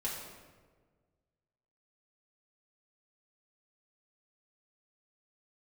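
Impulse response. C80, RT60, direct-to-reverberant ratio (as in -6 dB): 4.0 dB, 1.5 s, -6.5 dB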